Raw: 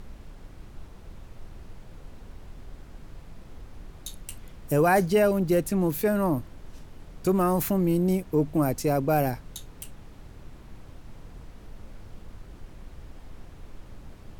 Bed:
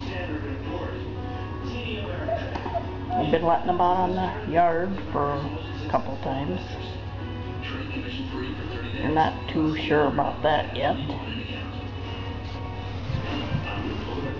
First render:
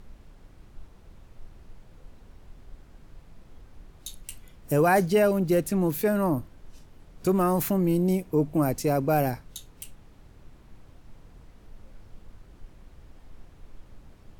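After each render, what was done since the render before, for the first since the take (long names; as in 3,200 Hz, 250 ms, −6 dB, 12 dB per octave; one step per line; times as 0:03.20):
noise reduction from a noise print 6 dB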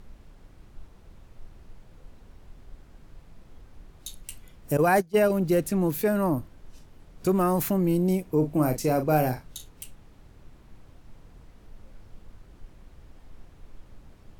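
0:04.77–0:05.30: noise gate −22 dBFS, range −23 dB
0:08.38–0:09.69: double-tracking delay 39 ms −8.5 dB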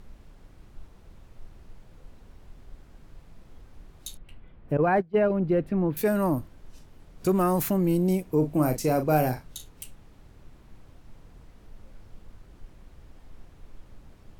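0:04.17–0:05.97: high-frequency loss of the air 460 metres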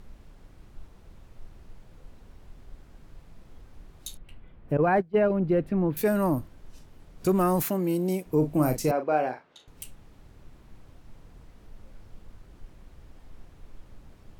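0:07.62–0:08.26: Bessel high-pass filter 240 Hz
0:08.91–0:09.68: band-pass filter 410–2,600 Hz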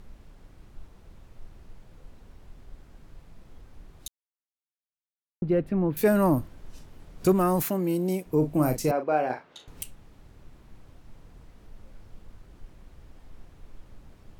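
0:04.08–0:05.42: silence
0:06.02–0:07.33: clip gain +3 dB
0:09.30–0:09.83: clip gain +5 dB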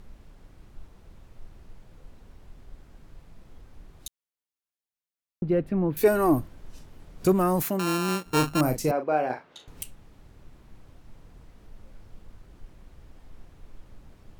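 0:06.00–0:06.40: comb filter 2.7 ms, depth 69%
0:07.79–0:08.61: samples sorted by size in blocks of 32 samples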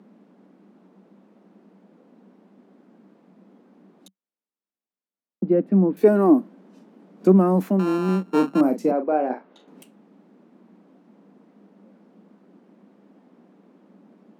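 Chebyshev high-pass filter 190 Hz, order 6
spectral tilt −4.5 dB per octave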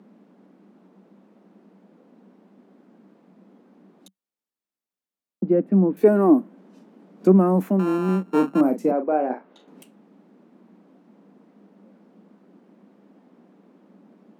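dynamic equaliser 4,500 Hz, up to −7 dB, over −53 dBFS, Q 1.3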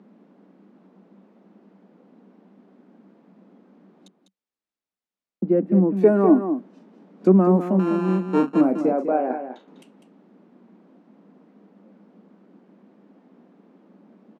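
high-frequency loss of the air 69 metres
on a send: single-tap delay 200 ms −9 dB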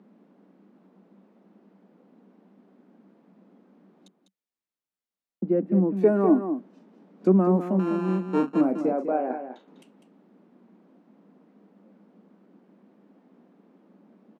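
level −4 dB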